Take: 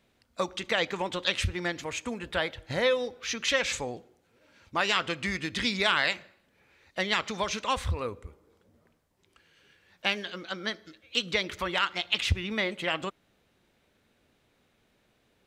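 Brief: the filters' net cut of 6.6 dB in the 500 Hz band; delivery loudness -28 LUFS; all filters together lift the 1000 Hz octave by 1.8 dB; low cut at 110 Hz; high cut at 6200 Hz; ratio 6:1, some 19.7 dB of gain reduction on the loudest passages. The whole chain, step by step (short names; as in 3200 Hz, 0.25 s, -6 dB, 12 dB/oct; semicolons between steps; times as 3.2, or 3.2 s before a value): HPF 110 Hz; LPF 6200 Hz; bell 500 Hz -9 dB; bell 1000 Hz +4.5 dB; compressor 6:1, threshold -43 dBFS; gain +17.5 dB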